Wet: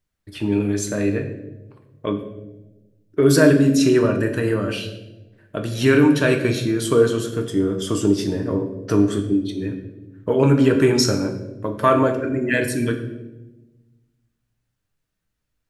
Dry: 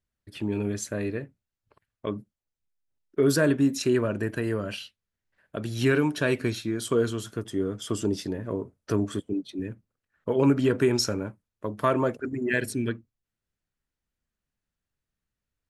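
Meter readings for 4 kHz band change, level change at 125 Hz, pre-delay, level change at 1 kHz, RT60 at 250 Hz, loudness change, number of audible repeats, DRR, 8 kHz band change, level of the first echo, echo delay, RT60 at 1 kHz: +6.5 dB, +8.0 dB, 6 ms, +8.0 dB, 1.5 s, +7.5 dB, no echo audible, 3.5 dB, +7.0 dB, no echo audible, no echo audible, 0.90 s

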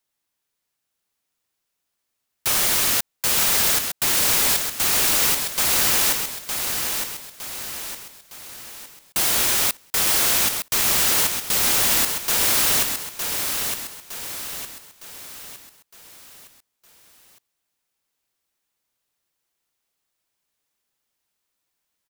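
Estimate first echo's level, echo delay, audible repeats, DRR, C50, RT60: −6.0 dB, 911 ms, 5, no reverb audible, no reverb audible, no reverb audible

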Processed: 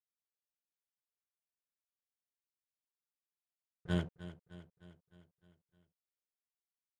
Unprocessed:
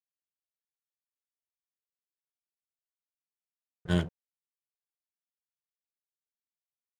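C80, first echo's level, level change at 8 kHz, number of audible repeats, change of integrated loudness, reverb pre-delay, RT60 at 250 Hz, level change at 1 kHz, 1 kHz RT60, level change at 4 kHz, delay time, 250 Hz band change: no reverb audible, −14.5 dB, −9.0 dB, 5, −8.0 dB, no reverb audible, no reverb audible, −6.5 dB, no reverb audible, −7.5 dB, 306 ms, −6.5 dB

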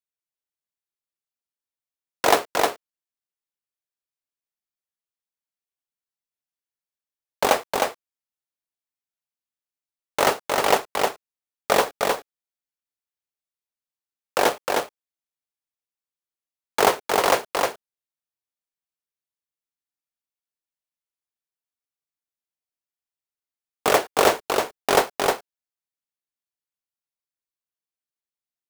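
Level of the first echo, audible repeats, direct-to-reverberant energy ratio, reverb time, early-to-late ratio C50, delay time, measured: −3.5 dB, 1, no reverb audible, no reverb audible, no reverb audible, 310 ms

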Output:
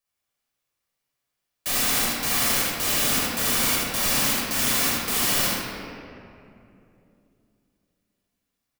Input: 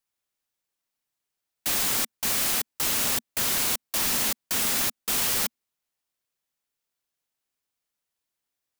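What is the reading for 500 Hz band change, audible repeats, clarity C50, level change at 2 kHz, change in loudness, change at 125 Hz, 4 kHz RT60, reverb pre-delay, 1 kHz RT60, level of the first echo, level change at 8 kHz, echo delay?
+6.0 dB, 1, −3.0 dB, +5.5 dB, +2.5 dB, +7.5 dB, 1.5 s, 9 ms, 2.4 s, −2.5 dB, +2.0 dB, 77 ms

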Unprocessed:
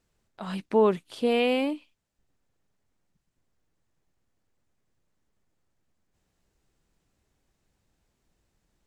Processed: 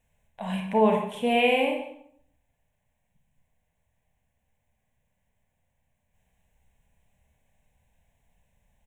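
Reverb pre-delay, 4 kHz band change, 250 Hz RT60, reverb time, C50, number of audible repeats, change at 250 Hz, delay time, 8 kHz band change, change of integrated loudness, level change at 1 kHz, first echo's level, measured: 30 ms, +3.0 dB, 0.75 s, 0.70 s, 5.0 dB, 1, +1.0 dB, 142 ms, can't be measured, +1.5 dB, +5.5 dB, −15.0 dB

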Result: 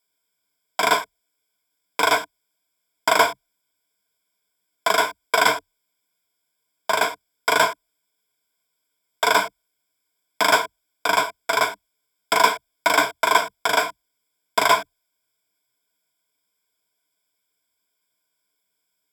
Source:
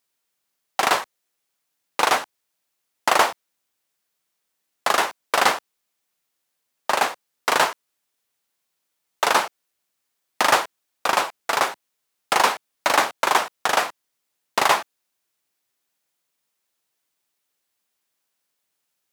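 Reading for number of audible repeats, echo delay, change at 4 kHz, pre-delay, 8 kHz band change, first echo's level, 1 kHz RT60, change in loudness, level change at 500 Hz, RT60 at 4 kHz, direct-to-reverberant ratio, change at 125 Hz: no echo audible, no echo audible, +1.0 dB, no reverb audible, −0.5 dB, no echo audible, no reverb audible, +1.0 dB, +2.0 dB, no reverb audible, no reverb audible, +1.0 dB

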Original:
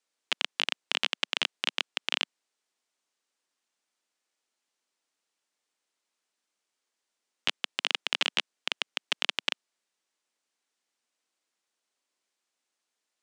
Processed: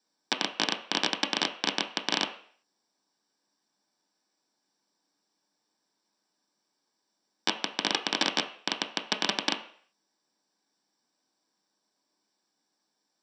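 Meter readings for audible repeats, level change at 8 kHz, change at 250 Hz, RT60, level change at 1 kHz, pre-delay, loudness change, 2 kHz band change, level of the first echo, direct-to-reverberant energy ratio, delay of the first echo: no echo audible, +5.5 dB, +13.5 dB, 0.55 s, +7.0 dB, 3 ms, +1.0 dB, −0.5 dB, no echo audible, 3.5 dB, no echo audible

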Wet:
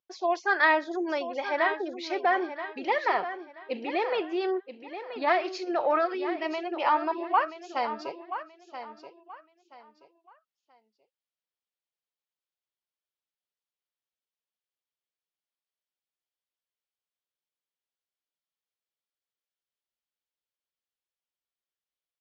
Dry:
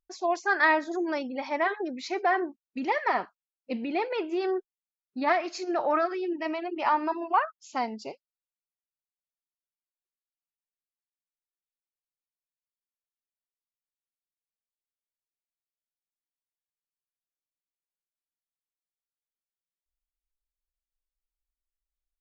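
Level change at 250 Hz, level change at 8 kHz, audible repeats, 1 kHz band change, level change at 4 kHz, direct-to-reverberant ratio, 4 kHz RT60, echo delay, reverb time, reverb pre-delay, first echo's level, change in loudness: −2.0 dB, can't be measured, 3, +0.5 dB, +2.5 dB, no reverb audible, no reverb audible, 979 ms, no reverb audible, no reverb audible, −11.0 dB, 0.0 dB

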